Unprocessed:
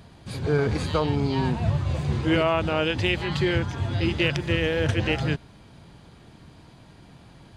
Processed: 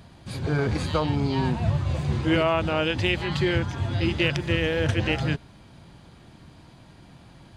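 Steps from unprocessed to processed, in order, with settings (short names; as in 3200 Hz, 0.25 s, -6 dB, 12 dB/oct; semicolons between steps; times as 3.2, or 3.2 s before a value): notch 440 Hz, Q 12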